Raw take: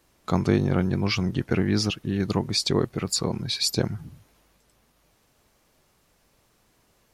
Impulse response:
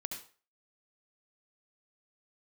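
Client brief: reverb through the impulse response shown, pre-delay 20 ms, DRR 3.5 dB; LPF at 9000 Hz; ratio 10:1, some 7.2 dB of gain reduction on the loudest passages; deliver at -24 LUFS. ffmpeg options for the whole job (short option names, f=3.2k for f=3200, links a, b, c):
-filter_complex "[0:a]lowpass=9k,acompressor=threshold=-24dB:ratio=10,asplit=2[a][b];[1:a]atrim=start_sample=2205,adelay=20[c];[b][c]afir=irnorm=-1:irlink=0,volume=-3dB[d];[a][d]amix=inputs=2:normalize=0,volume=3.5dB"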